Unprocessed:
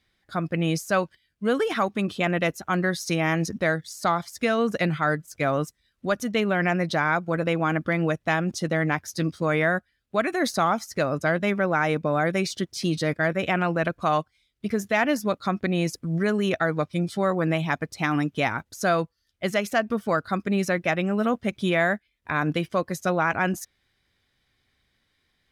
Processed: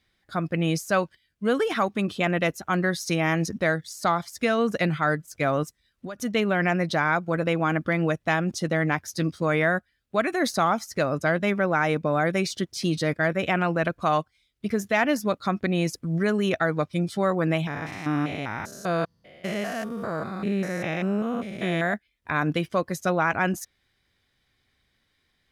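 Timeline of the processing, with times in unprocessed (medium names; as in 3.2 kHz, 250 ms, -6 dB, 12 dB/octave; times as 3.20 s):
5.63–6.19 s: compression 8:1, threshold -31 dBFS
17.67–21.94 s: spectrogram pixelated in time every 200 ms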